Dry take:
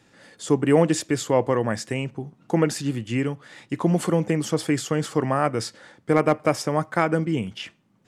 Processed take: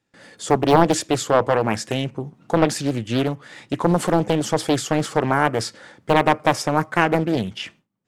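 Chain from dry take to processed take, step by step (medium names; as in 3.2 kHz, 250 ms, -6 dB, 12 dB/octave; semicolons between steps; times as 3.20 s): gate with hold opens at -45 dBFS; loudspeaker Doppler distortion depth 0.88 ms; trim +4 dB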